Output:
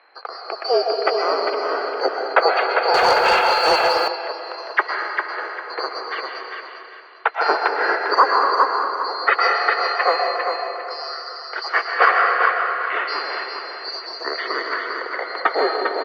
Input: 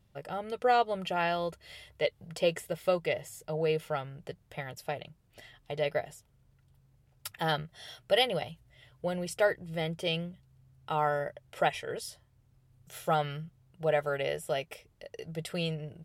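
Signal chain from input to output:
neighbouring bands swapped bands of 4,000 Hz
comb and all-pass reverb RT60 2.2 s, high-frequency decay 0.7×, pre-delay 85 ms, DRR 2.5 dB
single-sideband voice off tune +75 Hz 350–2,200 Hz
on a send: repeating echo 400 ms, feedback 30%, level −5.5 dB
0:02.94–0:04.08: on the sum: leveller curve on the samples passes 2
boost into a limiter +35.5 dB
level −1.5 dB

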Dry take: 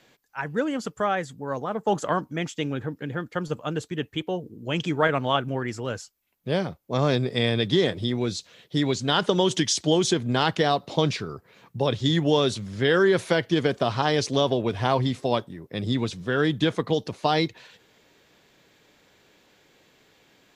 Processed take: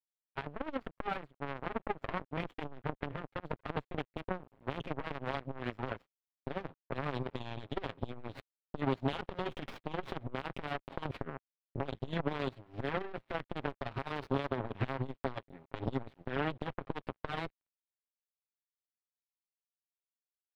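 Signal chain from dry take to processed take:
lower of the sound and its delayed copy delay 7.4 ms
parametric band 1,600 Hz −2.5 dB 0.58 octaves
downward compressor 3 to 1, threshold −30 dBFS, peak gain reduction 9.5 dB
brickwall limiter −24.5 dBFS, peak gain reduction 8.5 dB
power curve on the samples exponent 3
bit reduction 12 bits
high-frequency loss of the air 500 metres
saturating transformer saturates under 320 Hz
level +10 dB

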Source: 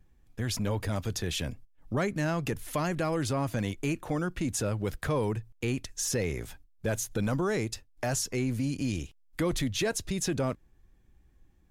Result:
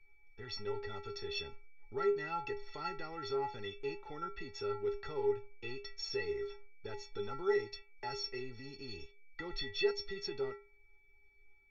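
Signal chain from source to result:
Chebyshev low-pass with heavy ripple 5,900 Hz, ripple 3 dB
stiff-string resonator 400 Hz, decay 0.37 s, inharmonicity 0.03
steady tone 2,300 Hz −80 dBFS
level +12.5 dB

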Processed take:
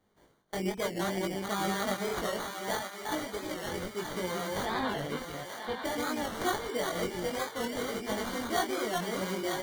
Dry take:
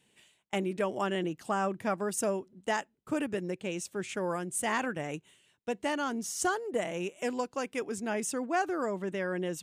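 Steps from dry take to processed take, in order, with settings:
delay that plays each chunk backwards 209 ms, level −1.5 dB
0:02.13–0:03.74: low-shelf EQ 310 Hz −8.5 dB
sample-rate reduction 2,600 Hz, jitter 0%
0:04.65–0:05.85: Butterworth low-pass 4,200 Hz
feedback echo with a high-pass in the loop 934 ms, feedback 61%, high-pass 710 Hz, level −5.5 dB
chorus effect 0.62 Hz, delay 19.5 ms, depth 3 ms
wow of a warped record 45 rpm, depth 100 cents

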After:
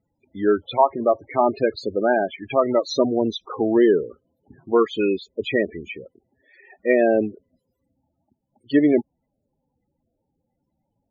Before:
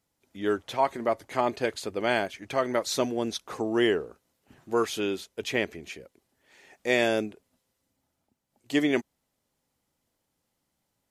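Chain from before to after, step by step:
spectral peaks only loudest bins 16
treble cut that deepens with the level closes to 1,400 Hz, closed at −21 dBFS
level +8.5 dB

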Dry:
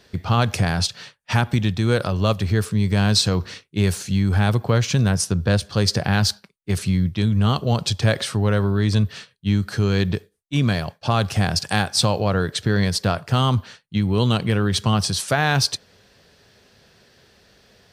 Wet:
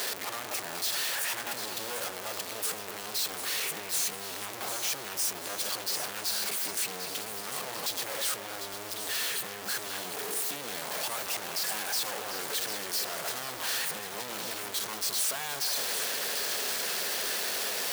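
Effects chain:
sign of each sample alone
high-pass filter 440 Hz 12 dB per octave
high-shelf EQ 7,700 Hz +7 dB
brickwall limiter −18 dBFS, peak gain reduction 8 dB
echo with a time of its own for lows and highs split 2,800 Hz, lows 217 ms, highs 748 ms, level −8.5 dB
level −5.5 dB

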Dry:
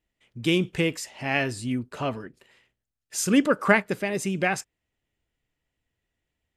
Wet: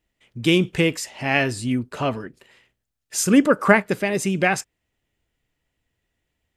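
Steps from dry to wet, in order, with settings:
0:03.22–0:03.81: dynamic equaliser 3,700 Hz, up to −7 dB, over −37 dBFS, Q 1
level +5 dB

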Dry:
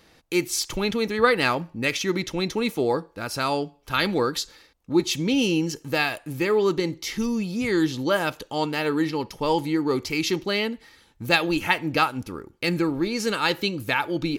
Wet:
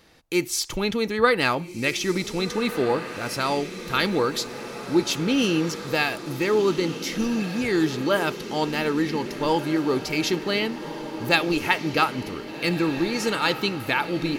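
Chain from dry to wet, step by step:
feedback delay with all-pass diffusion 1,570 ms, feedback 60%, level −11 dB

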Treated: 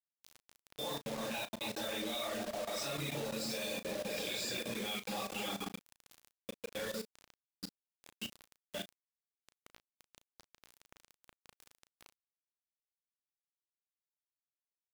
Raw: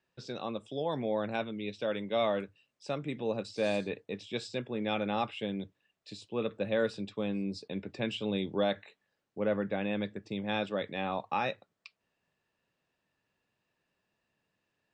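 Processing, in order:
source passing by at 0:03.24, 10 m/s, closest 5.5 metres
echo whose low-pass opens from repeat to repeat 139 ms, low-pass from 400 Hz, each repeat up 1 octave, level 0 dB
four-comb reverb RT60 0.68 s, combs from 28 ms, DRR −9 dB
reverb reduction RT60 0.94 s
downward compressor 10 to 1, threshold −32 dBFS, peak gain reduction 15 dB
first-order pre-emphasis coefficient 0.9
mains-hum notches 50/100/150/200/250/300/350/400 Hz
output level in coarse steps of 14 dB
bit reduction 10 bits
double-tracking delay 35 ms −12 dB
level +16.5 dB

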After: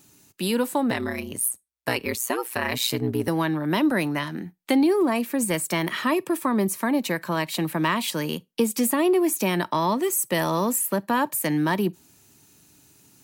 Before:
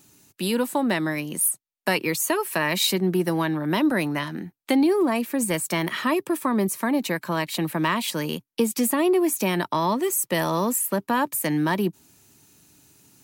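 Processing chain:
0:00.90–0:03.28: ring modulation 61 Hz
convolution reverb RT60 0.20 s, pre-delay 34 ms, DRR 26 dB

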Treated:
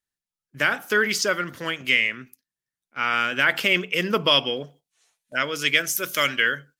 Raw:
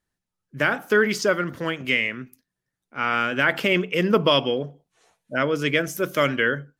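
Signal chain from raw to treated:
noise gate −44 dBFS, range −9 dB
tilt shelving filter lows −6 dB, about 1,400 Hz, from 0:04.64 lows −10 dB

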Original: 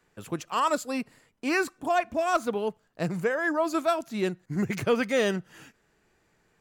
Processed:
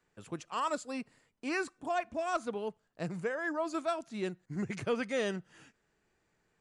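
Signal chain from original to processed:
downsampling to 22,050 Hz
level −8 dB

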